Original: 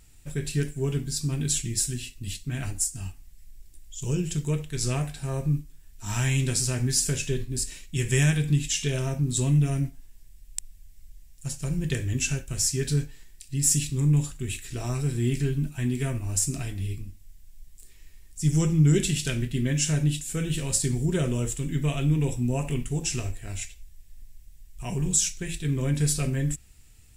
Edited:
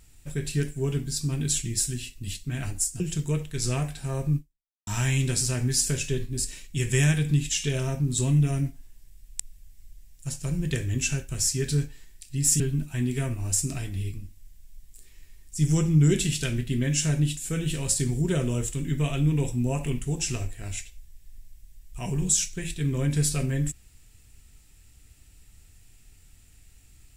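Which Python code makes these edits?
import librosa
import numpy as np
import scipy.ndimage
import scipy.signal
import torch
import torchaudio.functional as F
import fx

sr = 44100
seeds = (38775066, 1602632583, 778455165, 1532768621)

y = fx.edit(x, sr, fx.cut(start_s=3.0, length_s=1.19),
    fx.fade_out_span(start_s=5.55, length_s=0.51, curve='exp'),
    fx.cut(start_s=13.79, length_s=1.65), tone=tone)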